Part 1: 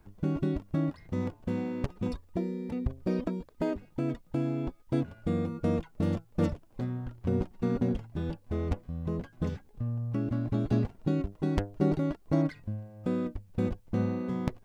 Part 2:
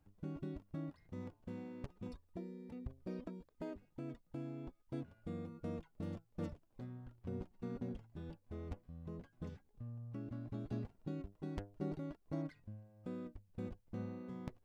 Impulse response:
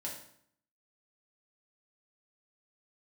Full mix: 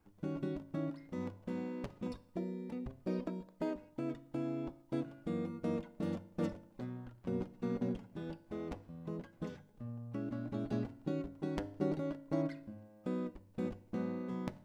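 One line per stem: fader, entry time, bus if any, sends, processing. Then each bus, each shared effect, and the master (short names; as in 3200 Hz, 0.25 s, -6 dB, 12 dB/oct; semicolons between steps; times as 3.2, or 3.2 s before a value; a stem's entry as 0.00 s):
-12.0 dB, 0.00 s, send -12 dB, HPF 89 Hz 24 dB/oct; notches 50/100/150 Hz
-2.5 dB, 0.00 s, send -6.5 dB, dry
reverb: on, RT60 0.65 s, pre-delay 3 ms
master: dry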